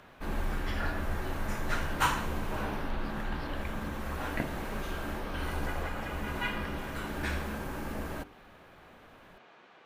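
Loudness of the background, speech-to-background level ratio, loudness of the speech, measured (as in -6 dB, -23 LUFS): -43.5 LUFS, 7.5 dB, -36.0 LUFS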